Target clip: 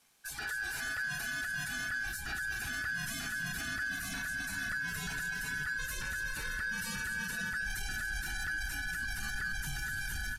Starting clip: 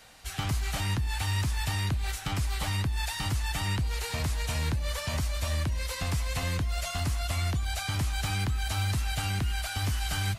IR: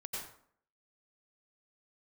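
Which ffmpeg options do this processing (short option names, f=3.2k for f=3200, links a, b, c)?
-filter_complex "[0:a]aemphasis=mode=production:type=50kf,aeval=exprs='val(0)*sin(2*PI*1600*n/s)':c=same,asubboost=boost=6.5:cutoff=180,alimiter=limit=-23.5dB:level=0:latency=1:release=42,asoftclip=type=tanh:threshold=-30.5dB,afftdn=nr=16:nf=-44,asplit=2[a][b];[b]aecho=0:1:219:0.316[c];[a][c]amix=inputs=2:normalize=0,aresample=32000,aresample=44100"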